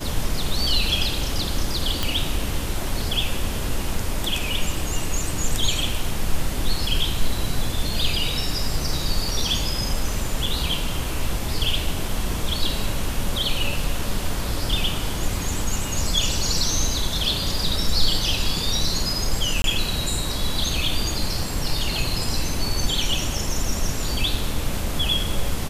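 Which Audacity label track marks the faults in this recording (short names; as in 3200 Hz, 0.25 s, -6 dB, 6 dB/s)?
2.030000	2.030000	pop
10.460000	10.460000	gap 4.1 ms
19.620000	19.640000	gap 22 ms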